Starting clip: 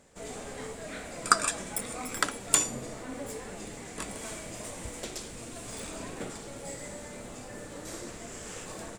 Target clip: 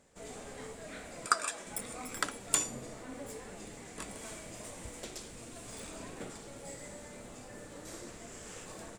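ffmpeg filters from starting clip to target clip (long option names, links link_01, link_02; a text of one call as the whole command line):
ffmpeg -i in.wav -filter_complex "[0:a]asettb=1/sr,asplit=3[link_01][link_02][link_03];[link_01]atrim=end=1.264[link_04];[link_02]atrim=start=1.26:end=1.67,asetpts=PTS-STARTPTS,afade=type=in:duration=0.004:curve=qsin,afade=type=out:start_time=0.406:duration=0.004:curve=qsin,bass=frequency=250:gain=-15,treble=frequency=4000:gain=-2[link_05];[link_03]atrim=start=1.666[link_06];[link_04][link_05]acrossfade=duration=0.004:curve1=hsin:curve2=qsin[link_07];[link_07][link_06]acrossfade=duration=0.004:curve1=qsin:curve2=hsin,volume=-5.5dB" out.wav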